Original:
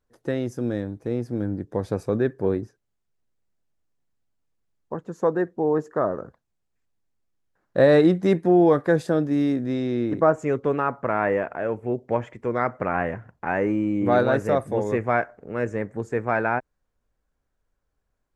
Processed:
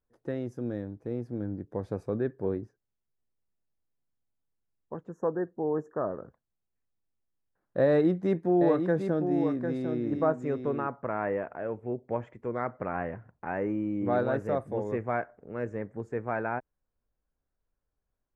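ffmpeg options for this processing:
-filter_complex "[0:a]asettb=1/sr,asplit=3[a][b][c];[a]atrim=end=5.094[d];[b]atrim=start=5.09:end=6.11,asetpts=PTS-STARTPTS,afade=t=in:d=0.004:c=qsin,afade=t=out:st=1.016:d=0.004:c=qsin,asuperstop=centerf=3200:order=20:qfactor=0.89[e];[c]atrim=start=6.106[f];[d][e]acrossfade=d=0.004:c1=hsin:c2=qsin[g];[g][f]acrossfade=d=0.004:c1=qsin:c2=hsin,asettb=1/sr,asplit=3[h][i][j];[h]atrim=end=7.864[k];[i]atrim=start=7.86:end=10.87,asetpts=PTS-STARTPTS,afade=t=in:d=0.004:c=qsin,afade=t=out:st=3.006:d=0.004:c=qsin,aecho=1:1:751:0.473,atrim=end_sample=132741[l];[j]atrim=start=10.866[m];[k][l]acrossfade=d=0.004:c1=hsin:c2=qsin[n];[n][m]acrossfade=d=0.004:c1=qsin:c2=hsin,highshelf=f=2.6k:g=-11,volume=-7dB"

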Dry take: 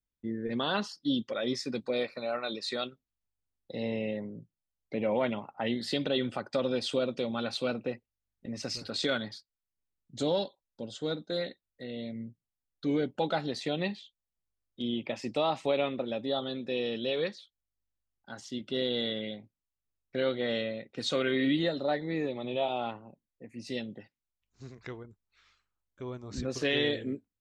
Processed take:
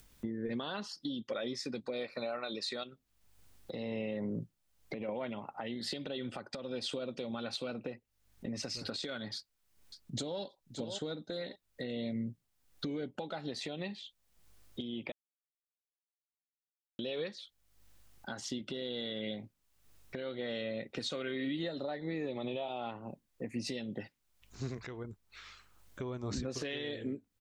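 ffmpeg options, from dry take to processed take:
-filter_complex "[0:a]asettb=1/sr,asplit=3[a][b][c];[a]atrim=end=2.834[d];[b]atrim=start=2.83:end=5.09,asetpts=PTS-STARTPTS,afade=t=in:d=0.004:c=qsin,afade=t=out:st=2.256:d=0.004:c=qsin,acompressor=threshold=-40dB:ratio=3:attack=3.2:release=140:knee=1:detection=peak[e];[c]atrim=start=5.086[f];[d][e]acrossfade=d=0.004:c1=hsin:c2=qsin[g];[g][f]acrossfade=d=0.004:c1=qsin:c2=hsin,asplit=2[h][i];[i]afade=t=in:st=9.35:d=0.01,afade=t=out:st=10.41:d=0.01,aecho=0:1:570|1140|1710:0.125893|0.0377678|0.0113303[j];[h][j]amix=inputs=2:normalize=0,asplit=3[k][l][m];[k]atrim=end=15.12,asetpts=PTS-STARTPTS,afade=t=out:st=15.116:d=0.004:c=hsin[n];[l]atrim=start=15.12:end=16.99,asetpts=PTS-STARTPTS,volume=0[o];[m]atrim=start=16.99,asetpts=PTS-STARTPTS,afade=t=in:d=0.004:c=hsin[p];[n][o][p]concat=n=3:v=0:a=1,acompressor=threshold=-41dB:ratio=16,alimiter=level_in=13dB:limit=-24dB:level=0:latency=1:release=304,volume=-13dB,acompressor=mode=upward:threshold=-55dB:ratio=2.5,volume=9.5dB"

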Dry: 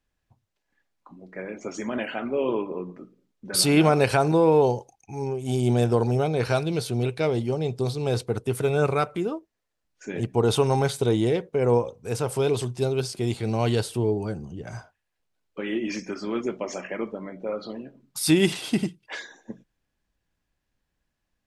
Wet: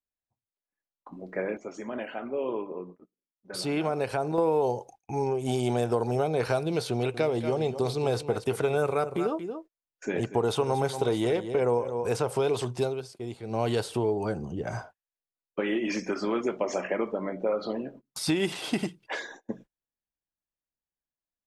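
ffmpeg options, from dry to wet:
-filter_complex "[0:a]asettb=1/sr,asplit=3[a][b][c];[a]atrim=end=6.914[d];[b]atrim=start=6.91:end=12.22,asetpts=PTS-STARTPTS,afade=t=in:d=0.004:c=qsin,afade=t=out:st=5.306:d=0.004:c=qsin,aecho=1:1:231:0.224,atrim=end_sample=234171[e];[c]atrim=start=12.216[f];[d][e]acrossfade=d=0.004:c1=hsin:c2=qsin[g];[g][f]acrossfade=d=0.004:c1=qsin:c2=hsin,asplit=5[h][i][j][k][l];[h]atrim=end=1.57,asetpts=PTS-STARTPTS,afade=t=out:st=1.26:d=0.31:c=log:silence=0.281838[m];[i]atrim=start=1.57:end=4.38,asetpts=PTS-STARTPTS,volume=-11dB[n];[j]atrim=start=4.38:end=13,asetpts=PTS-STARTPTS,afade=t=in:d=0.31:c=log:silence=0.281838,afade=t=out:st=8.4:d=0.22:silence=0.188365[o];[k]atrim=start=13:end=13.49,asetpts=PTS-STARTPTS,volume=-14.5dB[p];[l]atrim=start=13.49,asetpts=PTS-STARTPTS,afade=t=in:d=0.22:silence=0.188365[q];[m][n][o][p][q]concat=n=5:v=0:a=1,agate=range=-25dB:threshold=-50dB:ratio=16:detection=peak,equalizer=f=640:w=0.46:g=7.5,acrossover=split=690|7700[r][s][t];[r]acompressor=threshold=-27dB:ratio=4[u];[s]acompressor=threshold=-32dB:ratio=4[v];[t]acompressor=threshold=-49dB:ratio=4[w];[u][v][w]amix=inputs=3:normalize=0"

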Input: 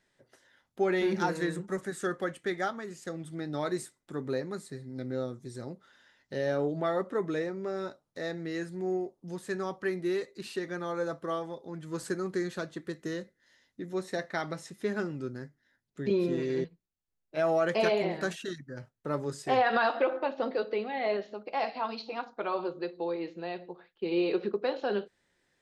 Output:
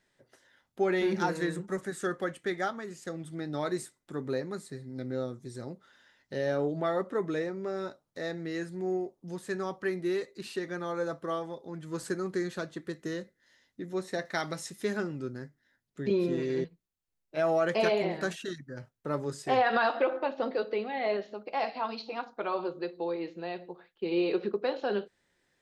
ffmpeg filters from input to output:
-filter_complex "[0:a]asettb=1/sr,asplit=3[a][b][c];[a]atrim=end=14.254[d];[b]atrim=start=14.25:end=14.97,asetpts=PTS-STARTPTS,afade=t=in:d=0.004:c=qsin,afade=t=out:st=0.716:d=0.004:c=qsin,highshelf=f=3.6k:g=9.5[e];[c]atrim=start=14.966[f];[d][e]acrossfade=d=0.004:c1=hsin:c2=qsin[g];[g][f]acrossfade=d=0.004:c1=qsin:c2=hsin"

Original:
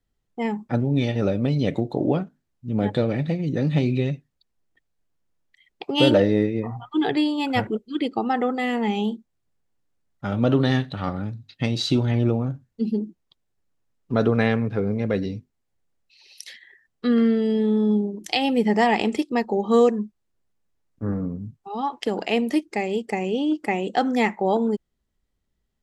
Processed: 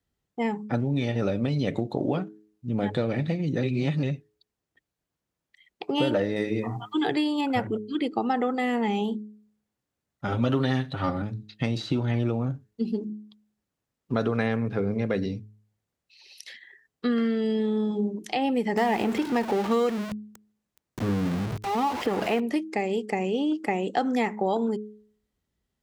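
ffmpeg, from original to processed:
-filter_complex "[0:a]asettb=1/sr,asplit=3[a][b][c];[a]atrim=end=6.364[d];[b]atrim=start=6.36:end=7.41,asetpts=PTS-STARTPTS,afade=t=in:d=0.004:c=qsin,afade=t=out:st=1.046:d=0.004:c=qsin,highshelf=f=3k:g=11.5[e];[c]atrim=start=7.406[f];[d][e]acrossfade=d=0.004:c1=hsin:c2=qsin[g];[g][f]acrossfade=d=0.004:c1=qsin:c2=hsin,asettb=1/sr,asplit=3[h][i][j];[h]atrim=end=10.274[k];[i]atrim=start=10.27:end=11.22,asetpts=PTS-STARTPTS,afade=t=in:d=0.004:c=qsin,afade=t=out:st=0.946:d=0.004:c=qsin,aecho=1:1:7.5:0.84,atrim=end_sample=41895[l];[j]atrim=start=11.216[m];[k][l]acrossfade=d=0.004:c1=hsin:c2=qsin[n];[n][m]acrossfade=d=0.004:c1=qsin:c2=hsin,asettb=1/sr,asplit=3[o][p][q];[o]atrim=end=18.774[r];[p]atrim=start=18.77:end=22.4,asetpts=PTS-STARTPTS,afade=t=in:d=0.004:c=qsin,afade=t=out:st=3.626:d=0.004:c=qsin,aeval=exprs='val(0)+0.5*0.0562*sgn(val(0))':c=same[s];[q]atrim=start=22.396[t];[r][s]acrossfade=d=0.004:c1=hsin:c2=qsin[u];[u][t]acrossfade=d=0.004:c1=qsin:c2=hsin,asplit=3[v][w][x];[v]atrim=end=3.632[y];[w]atrim=start=3.628:end=4.032,asetpts=PTS-STARTPTS,areverse[z];[x]atrim=start=4.028[aa];[y][z]acrossfade=d=0.004:c1=hsin:c2=hsin[ab];[ab][aa]acrossfade=d=0.004:c1=hsin:c2=hsin,highpass=59,bandreject=f=105.9:t=h:w=4,bandreject=f=211.8:t=h:w=4,bandreject=f=317.7:t=h:w=4,bandreject=f=423.6:t=h:w=4,acrossover=split=920|2300|5700[ac][ad][ae][af];[ac]acompressor=threshold=-23dB:ratio=4[ag];[ad]acompressor=threshold=-32dB:ratio=4[ah];[ae]acompressor=threshold=-44dB:ratio=4[ai];[af]acompressor=threshold=-52dB:ratio=4[aj];[ag][ah][ai][aj]amix=inputs=4:normalize=0"

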